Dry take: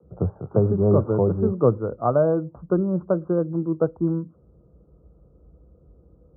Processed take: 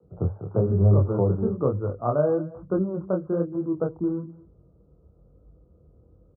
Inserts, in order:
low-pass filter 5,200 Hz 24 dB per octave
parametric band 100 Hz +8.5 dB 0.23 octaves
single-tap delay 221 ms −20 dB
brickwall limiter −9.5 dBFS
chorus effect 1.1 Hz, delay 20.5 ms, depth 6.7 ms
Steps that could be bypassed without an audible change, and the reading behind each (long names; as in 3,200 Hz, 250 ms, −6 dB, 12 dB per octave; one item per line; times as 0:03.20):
low-pass filter 5,200 Hz: nothing at its input above 1,400 Hz